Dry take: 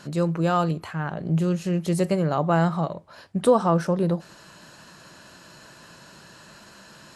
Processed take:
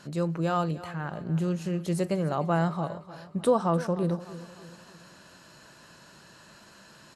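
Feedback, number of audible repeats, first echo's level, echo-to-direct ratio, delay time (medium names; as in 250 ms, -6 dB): 47%, 3, -16.0 dB, -15.0 dB, 299 ms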